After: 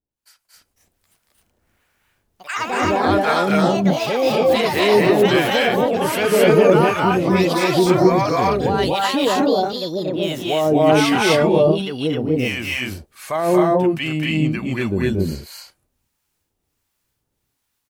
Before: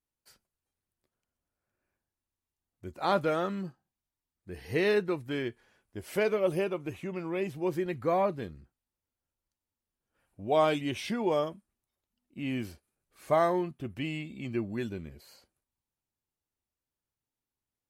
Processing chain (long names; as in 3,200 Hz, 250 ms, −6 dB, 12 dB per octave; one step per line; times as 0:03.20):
automatic gain control gain up to 12 dB
brickwall limiter −12 dBFS, peak gain reduction 9 dB
delay with pitch and tempo change per echo 327 ms, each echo +4 semitones, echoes 3
two-band tremolo in antiphase 1.4 Hz, depth 100%, crossover 810 Hz
on a send: loudspeakers that aren't time-aligned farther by 79 metres −3 dB, 90 metres 0 dB
on the sum: level +6 dB